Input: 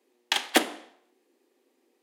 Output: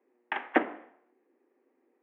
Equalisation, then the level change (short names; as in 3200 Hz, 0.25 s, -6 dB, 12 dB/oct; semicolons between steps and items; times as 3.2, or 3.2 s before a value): inverse Chebyshev low-pass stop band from 4100 Hz, stop band 40 dB; -1.5 dB